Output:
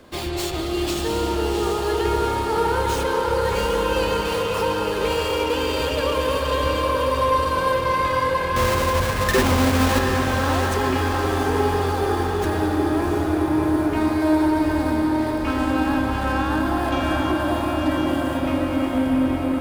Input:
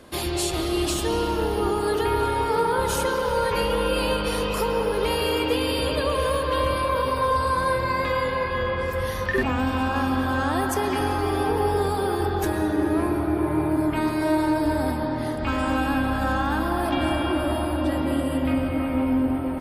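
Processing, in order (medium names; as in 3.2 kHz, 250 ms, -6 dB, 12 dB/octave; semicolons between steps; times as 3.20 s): 8.56–9.99 s: square wave that keeps the level; on a send: echo that smears into a reverb 720 ms, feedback 58%, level -4 dB; on the sum: sliding maximum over 3 samples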